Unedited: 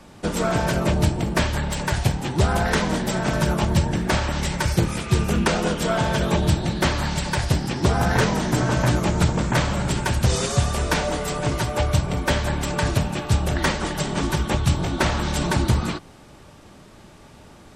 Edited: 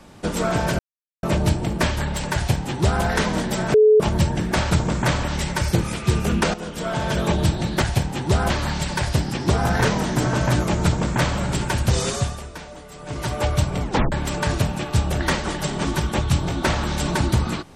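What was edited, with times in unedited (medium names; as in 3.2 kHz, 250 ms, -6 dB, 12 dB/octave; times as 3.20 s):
0.79 s: insert silence 0.44 s
1.91–2.59 s: copy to 6.86 s
3.30–3.56 s: bleep 429 Hz -9.5 dBFS
5.58–6.25 s: fade in, from -12.5 dB
9.20–9.72 s: copy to 4.27 s
10.50–11.68 s: dip -15 dB, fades 0.44 s quadratic
12.18 s: tape stop 0.30 s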